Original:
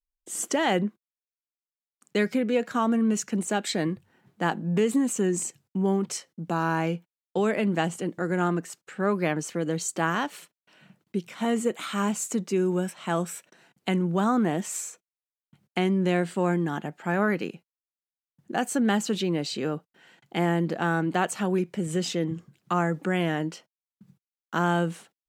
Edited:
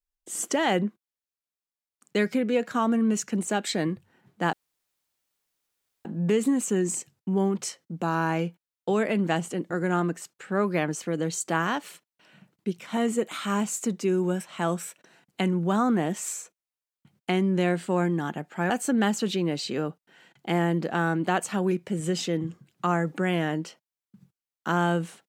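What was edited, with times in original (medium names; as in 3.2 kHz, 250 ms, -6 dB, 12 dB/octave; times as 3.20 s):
4.53 s: insert room tone 1.52 s
17.18–18.57 s: delete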